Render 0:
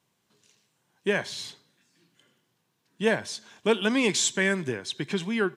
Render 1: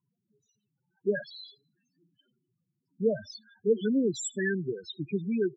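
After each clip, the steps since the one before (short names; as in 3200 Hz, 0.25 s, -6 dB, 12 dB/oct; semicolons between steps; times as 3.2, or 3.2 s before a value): notch 2100 Hz, Q 9.4; loudest bins only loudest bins 4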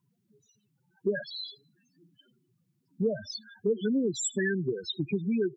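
compressor 3:1, threshold -35 dBFS, peak gain reduction 12 dB; gain +7.5 dB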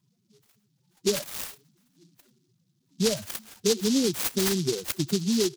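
noise-modulated delay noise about 4800 Hz, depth 0.19 ms; gain +3.5 dB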